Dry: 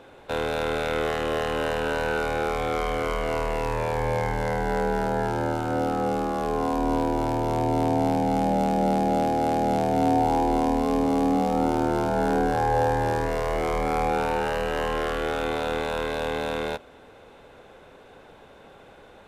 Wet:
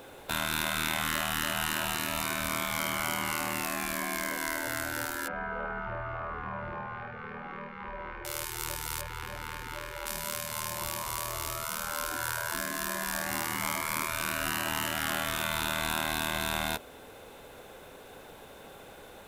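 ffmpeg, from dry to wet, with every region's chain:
-filter_complex "[0:a]asettb=1/sr,asplit=3[s0][s1][s2];[s0]atrim=end=5.284[s3];[s1]atrim=start=5.28:end=8.25,asetpts=PTS-STARTPTS,afade=t=in:d=0.004:c=qsin,afade=t=out:st=2.966:d=0.004:c=qsin,lowpass=f=2000:w=0.5412,lowpass=f=2000:w=1.3066,aecho=1:1:3.3:0.32,atrim=end_sample=130977[s4];[s2]atrim=start=8.246[s5];[s3][s4]acrossfade=d=0.004:c1=hsin:c2=qsin[s6];[s6][s5]acrossfade=d=0.004:c1=qsin:c2=hsin,asettb=1/sr,asplit=3[s7][s8][s9];[s7]atrim=end=9.014[s10];[s8]atrim=start=9.01:end=10.06,asetpts=PTS-STARTPTS,afade=t=in:d=0.004:c=qsin,afade=t=out:st=1.046:d=0.004:c=qsin,bass=f=250:g=0,treble=f=4000:g=-15,bandreject=f=60:t=h:w=6,bandreject=f=120:t=h:w=6,bandreject=f=180:t=h:w=6,bandreject=f=240:t=h:w=6,bandreject=f=300:t=h:w=6[s11];[s9]atrim=start=10.056[s12];[s10][s11]acrossfade=d=0.004:c1=hsin:c2=qsin[s13];[s13][s12]acrossfade=d=0.004:c1=qsin:c2=hsin,aemphasis=mode=production:type=50fm,afftfilt=real='re*lt(hypot(re,im),0.112)':imag='im*lt(hypot(re,im),0.112)':win_size=1024:overlap=0.75,highshelf=f=11000:g=6"

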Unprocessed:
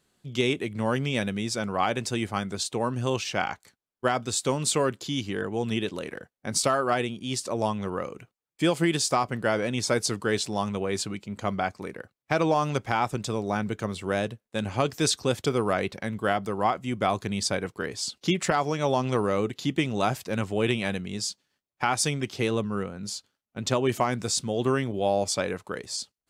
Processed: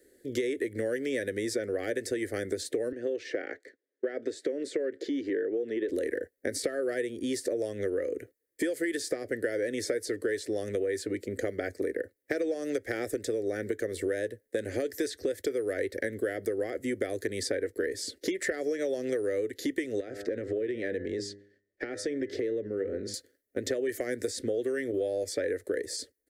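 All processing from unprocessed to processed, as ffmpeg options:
-filter_complex "[0:a]asettb=1/sr,asplit=3[s0][s1][s2];[s0]atrim=end=2.924[s3];[s1]atrim=start=2.92:end=5.89,asetpts=PTS-STARTPTS,afade=t=in:d=0.004:c=qsin,afade=t=out:st=2.966:d=0.004:c=qsin,acompressor=threshold=0.0224:ratio=2.5:attack=3.2:release=140:knee=1:detection=peak,highpass=260,lowpass=3200[s4];[s2]atrim=start=5.886[s5];[s3][s4]acrossfade=d=0.004:c1=hsin:c2=qsin[s6];[s6][s5]acrossfade=d=0.004:c1=qsin:c2=hsin,asettb=1/sr,asplit=3[s7][s8][s9];[s7]atrim=end=20.004[s10];[s8]atrim=start=20:end=23.14,asetpts=PTS-STARTPTS,afade=t=in:d=0.004:c=qsin,afade=t=out:st=3.136:d=0.004:c=qsin,lowpass=4100,bandreject=f=100.9:t=h:w=4,bandreject=f=201.8:t=h:w=4,bandreject=f=302.7:t=h:w=4,bandreject=f=403.6:t=h:w=4,bandreject=f=504.5:t=h:w=4,bandreject=f=605.4:t=h:w=4,bandreject=f=706.3:t=h:w=4,bandreject=f=807.2:t=h:w=4,bandreject=f=908.1:t=h:w=4,bandreject=f=1009:t=h:w=4,bandreject=f=1109.9:t=h:w=4,bandreject=f=1210.8:t=h:w=4,bandreject=f=1311.7:t=h:w=4,bandreject=f=1412.6:t=h:w=4,bandreject=f=1513.5:t=h:w=4,bandreject=f=1614.4:t=h:w=4,bandreject=f=1715.3:t=h:w=4,bandreject=f=1816.2:t=h:w=4,bandreject=f=1917.1:t=h:w=4,bandreject=f=2018:t=h:w=4,acompressor=threshold=0.0178:ratio=5:attack=3.2:release=140:knee=1:detection=peak[s11];[s9]atrim=start=23.136[s12];[s10][s11]acrossfade=d=0.004:c1=hsin:c2=qsin[s13];[s13][s12]acrossfade=d=0.004:c1=qsin:c2=hsin,acrossover=split=110|770|4000[s14][s15][s16][s17];[s14]acompressor=threshold=0.00447:ratio=4[s18];[s15]acompressor=threshold=0.0158:ratio=4[s19];[s16]acompressor=threshold=0.0355:ratio=4[s20];[s17]acompressor=threshold=0.01:ratio=4[s21];[s18][s19][s20][s21]amix=inputs=4:normalize=0,firequalizer=gain_entry='entry(100,0);entry(150,-20);entry(280,10);entry(500,14);entry(940,-29);entry(1800,9);entry(2600,-12);entry(4300,-4);entry(6500,-2);entry(11000,7)':delay=0.05:min_phase=1,acompressor=threshold=0.0282:ratio=6,volume=1.5"

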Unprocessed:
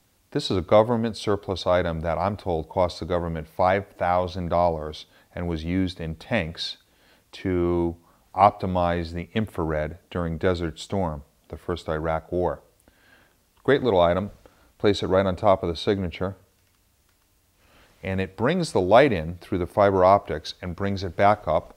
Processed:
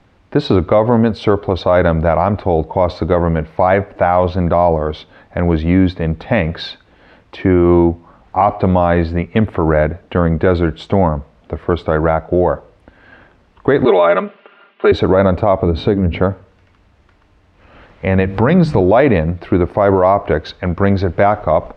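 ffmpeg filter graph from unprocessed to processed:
-filter_complex "[0:a]asettb=1/sr,asplit=3[s0][s1][s2];[s0]atrim=end=13.854[s3];[s1]atrim=start=13.85:end=14.92,asetpts=PTS-STARTPTS,afade=t=in:d=0.004:c=qsin,afade=t=out:st=1.066:d=0.004:c=qsin,highpass=f=290:w=0.5412,highpass=f=290:w=1.3066,equalizer=f=290:t=q:w=4:g=-8,equalizer=f=530:t=q:w=4:g=-10,equalizer=f=830:t=q:w=4:g=-7,equalizer=f=2800:t=q:w=4:g=8,lowpass=f=3600:w=0.5412,lowpass=f=3600:w=1.3066,aecho=1:1:5:0.9,atrim=end_sample=47187[s4];[s2]atrim=start=14.916[s5];[s3][s4]acrossfade=d=0.004:c1=hsin:c2=qsin[s6];[s6][s5]acrossfade=d=0.004:c1=qsin:c2=hsin,asettb=1/sr,asplit=3[s7][s8][s9];[s7]atrim=end=15.614[s10];[s8]atrim=start=15.61:end=16.2,asetpts=PTS-STARTPTS,afade=t=in:d=0.004:c=qsin,afade=t=out:st=0.586:d=0.004:c=qsin,lowshelf=f=400:g=10,bandreject=f=50:t=h:w=6,bandreject=f=100:t=h:w=6,bandreject=f=150:t=h:w=6,bandreject=f=200:t=h:w=6,bandreject=f=250:t=h:w=6,bandreject=f=300:t=h:w=6,acompressor=threshold=0.0447:ratio=2.5:attack=3.2:release=140:knee=1:detection=peak[s11];[s9]atrim=start=16.196[s12];[s10][s11]acrossfade=d=0.004:c1=hsin:c2=qsin[s13];[s13][s12]acrossfade=d=0.004:c1=qsin:c2=hsin,asettb=1/sr,asplit=3[s14][s15][s16];[s14]atrim=end=18.194[s17];[s15]atrim=start=18.19:end=18.81,asetpts=PTS-STARTPTS,afade=t=in:d=0.004:c=qsin,afade=t=out:st=0.616:d=0.004:c=qsin,bandreject=f=50:t=h:w=6,bandreject=f=100:t=h:w=6,bandreject=f=150:t=h:w=6,bandreject=f=200:t=h:w=6,bandreject=f=250:t=h:w=6,bandreject=f=300:t=h:w=6,asubboost=boost=11.5:cutoff=220,acompressor=mode=upward:threshold=0.0631:ratio=2.5:attack=3.2:release=140:knee=2.83:detection=peak[s18];[s16]atrim=start=18.806[s19];[s17][s18]acrossfade=d=0.004:c1=hsin:c2=qsin[s20];[s20][s19]acrossfade=d=0.004:c1=qsin:c2=hsin,lowpass=2200,alimiter=level_in=5.62:limit=0.891:release=50:level=0:latency=1,volume=0.891"

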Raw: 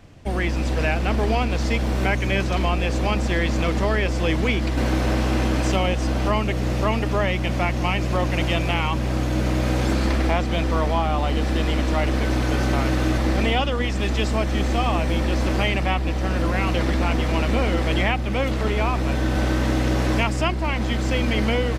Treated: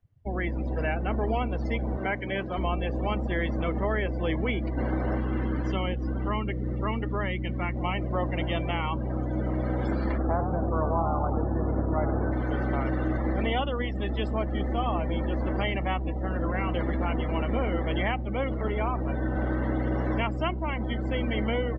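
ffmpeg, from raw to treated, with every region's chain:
-filter_complex "[0:a]asettb=1/sr,asplit=3[s0][s1][s2];[s0]atrim=end=1.974[s3];[s1]atrim=start=1.97:end=2.58,asetpts=PTS-STARTPTS,afade=t=in:d=0.004:c=qsin,afade=t=out:st=0.606:d=0.004:c=qsin,highpass=f=170:p=1,acrossover=split=7700[s4][s5];[s5]acompressor=threshold=0.00158:ratio=4:attack=1:release=60[s6];[s4][s6]amix=inputs=2:normalize=0[s7];[s2]atrim=start=2.576[s8];[s3][s7]acrossfade=d=0.004:c1=hsin:c2=qsin[s9];[s9][s8]acrossfade=d=0.004:c1=qsin:c2=hsin,asettb=1/sr,asplit=3[s10][s11][s12];[s10]atrim=end=5.184[s13];[s11]atrim=start=5.18:end=7.76,asetpts=PTS-STARTPTS,afade=t=in:d=0.004:c=qsin,afade=t=out:st=2.576:d=0.004:c=qsin,lowpass=7000,equalizer=f=660:t=o:w=0.68:g=-7.5[s14];[s12]atrim=start=7.756[s15];[s13][s14]acrossfade=d=0.004:c1=hsin:c2=qsin[s16];[s16][s15]acrossfade=d=0.004:c1=qsin:c2=hsin,asettb=1/sr,asplit=3[s17][s18][s19];[s17]atrim=end=10.184[s20];[s18]atrim=start=10.18:end=12.32,asetpts=PTS-STARTPTS,afade=t=in:d=0.004:c=qsin,afade=t=out:st=2.136:d=0.004:c=qsin,lowpass=f=1600:w=0.5412,lowpass=f=1600:w=1.3066,asplit=8[s21][s22][s23][s24][s25][s26][s27][s28];[s22]adelay=95,afreqshift=36,volume=0.447[s29];[s23]adelay=190,afreqshift=72,volume=0.245[s30];[s24]adelay=285,afreqshift=108,volume=0.135[s31];[s25]adelay=380,afreqshift=144,volume=0.0741[s32];[s26]adelay=475,afreqshift=180,volume=0.0407[s33];[s27]adelay=570,afreqshift=216,volume=0.0224[s34];[s28]adelay=665,afreqshift=252,volume=0.0123[s35];[s21][s29][s30][s31][s32][s33][s34][s35]amix=inputs=8:normalize=0,atrim=end_sample=94374[s36];[s19]atrim=start=12.316[s37];[s20][s36]acrossfade=d=0.004:c1=hsin:c2=qsin[s38];[s38][s37]acrossfade=d=0.004:c1=qsin:c2=hsin,bandreject=f=2500:w=9.6,afftdn=nr=27:nf=-30,bass=f=250:g=-2,treble=f=4000:g=-9,volume=0.562"

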